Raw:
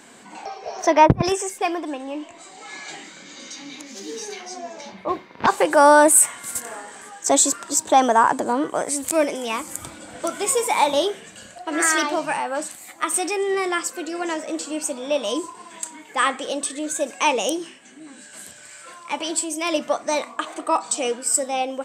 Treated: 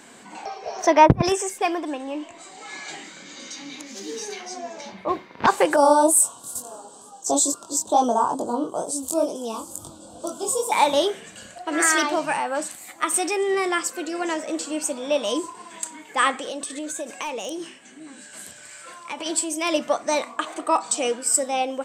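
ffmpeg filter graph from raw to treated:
-filter_complex "[0:a]asettb=1/sr,asplit=3[a][b][c];[a]atrim=end=5.764[d];[b]atrim=start=5.76:end=10.72,asetpts=PTS-STARTPTS,afade=t=in:d=0.004:c=qsin,afade=t=out:st=4.956:d=0.004:c=qsin,flanger=delay=20:depth=4.7:speed=2.2,asuperstop=centerf=2000:order=4:qfactor=0.78[e];[c]atrim=start=10.716[f];[d][e]acrossfade=d=0.004:c1=hsin:c2=qsin[g];[g][f]acrossfade=d=0.004:c1=qsin:c2=hsin,asettb=1/sr,asplit=3[h][i][j];[h]atrim=end=16.314[k];[i]atrim=start=16.31:end=19.26,asetpts=PTS-STARTPTS,afade=t=in:d=0.004:c=qsin,afade=t=out:st=2.946:d=0.004:c=qsin,volume=12.5dB,asoftclip=hard,volume=-12.5dB,acompressor=threshold=-27dB:ratio=6:attack=3.2:release=140:knee=1:detection=peak[l];[j]atrim=start=19.256[m];[k][l]acrossfade=d=0.004:c1=hsin:c2=qsin[n];[n][m]acrossfade=d=0.004:c1=qsin:c2=hsin"

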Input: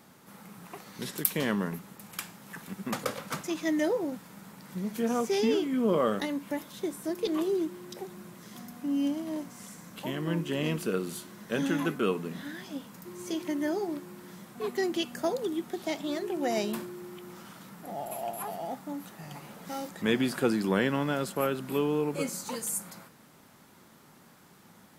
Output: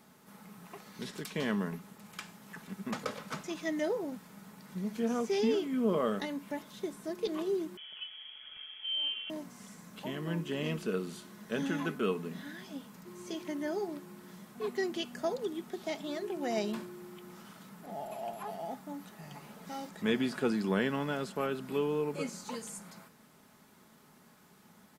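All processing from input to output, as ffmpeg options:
-filter_complex "[0:a]asettb=1/sr,asplit=3[a][b][c];[a]atrim=end=7.774[d];[b]atrim=start=7.77:end=9.3,asetpts=PTS-STARTPTS,afade=t=in:d=0.004:c=qsin,afade=t=out:st=1.526:d=0.004:c=qsin,aeval=exprs='val(0)+0.00398*(sin(2*PI*50*n/s)+sin(2*PI*2*50*n/s)/2+sin(2*PI*3*50*n/s)/3+sin(2*PI*4*50*n/s)/4+sin(2*PI*5*50*n/s)/5)':c=same,lowpass=f=2.9k:t=q:w=0.5098,lowpass=f=2.9k:t=q:w=0.6013,lowpass=f=2.9k:t=q:w=0.9,lowpass=f=2.9k:t=q:w=2.563,afreqshift=-3400[e];[c]atrim=start=9.296[f];[d][e]acrossfade=d=0.004:c1=hsin:c2=qsin[g];[g][f]acrossfade=d=0.004:c1=qsin:c2=hsin,acrossover=split=7200[h][i];[i]acompressor=threshold=-55dB:ratio=4:attack=1:release=60[j];[h][j]amix=inputs=2:normalize=0,aecho=1:1:4.7:0.31,volume=-4.5dB"

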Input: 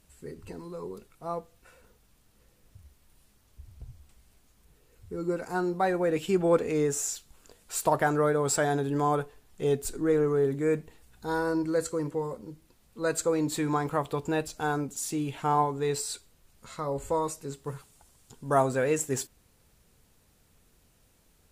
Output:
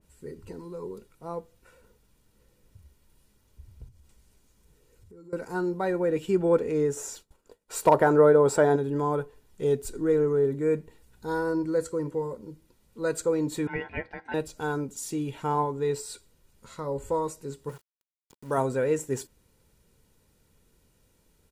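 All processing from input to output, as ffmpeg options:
-filter_complex "[0:a]asettb=1/sr,asplit=3[a][b][c];[a]atrim=end=3.884[d];[b]atrim=start=3.88:end=5.33,asetpts=PTS-STARTPTS,afade=t=in:d=0.004:c=qsin,afade=t=out:st=1.446:d=0.004:c=qsin,equalizer=f=6.9k:t=o:w=0.99:g=3.5,acompressor=threshold=-51dB:ratio=4:attack=3.2:release=140:knee=1:detection=peak[e];[c]atrim=start=5.326[f];[d][e]acrossfade=d=0.004:c1=hsin:c2=qsin[g];[g][f]acrossfade=d=0.004:c1=qsin:c2=hsin,asettb=1/sr,asplit=3[h][i][j];[h]atrim=end=6.974[k];[i]atrim=start=6.97:end=8.76,asetpts=PTS-STARTPTS,afade=t=in:d=0.004:c=qsin,afade=t=out:st=1.786:d=0.004:c=qsin,agate=range=-33dB:threshold=-49dB:ratio=3:release=100:detection=peak,equalizer=f=630:t=o:w=2.9:g=8,asoftclip=type=hard:threshold=-7.5dB[l];[j]atrim=start=8.756[m];[k][l]acrossfade=d=0.004:c1=hsin:c2=qsin[n];[n][m]acrossfade=d=0.004:c1=qsin:c2=hsin,asettb=1/sr,asplit=3[o][p][q];[o]atrim=end=13.674[r];[p]atrim=start=13.67:end=14.34,asetpts=PTS-STARTPTS,afade=t=in:d=0.004:c=qsin,afade=t=out:st=0.666:d=0.004:c=qsin,highpass=360,lowpass=2.2k,aecho=1:1:5.5:0.54,atrim=end_sample=29547,aeval=exprs='val(0)*sin(2*PI*1200*n/s)':c=same[s];[q]atrim=start=14.336[t];[r][s]acrossfade=d=0.004:c1=hsin:c2=qsin[u];[u][t]acrossfade=d=0.004:c1=qsin:c2=hsin,asettb=1/sr,asplit=3[v][w][x];[v]atrim=end=17.694[y];[w]atrim=start=17.69:end=18.58,asetpts=PTS-STARTPTS,afade=t=in:d=0.004:c=qsin,afade=t=out:st=0.886:d=0.004:c=qsin,lowshelf=f=230:g=-5.5,aeval=exprs='val(0)*gte(abs(val(0)),0.00562)':c=same[z];[x]atrim=start=18.576[aa];[y][z]acrossfade=d=0.004:c1=hsin:c2=qsin[ab];[ab][aa]acrossfade=d=0.004:c1=qsin:c2=hsin,equalizer=f=230:t=o:w=1.3:g=8,aecho=1:1:2.1:0.41,adynamicequalizer=threshold=0.0112:dfrequency=2200:dqfactor=0.7:tfrequency=2200:tqfactor=0.7:attack=5:release=100:ratio=0.375:range=2.5:mode=cutabove:tftype=highshelf,volume=-3.5dB"

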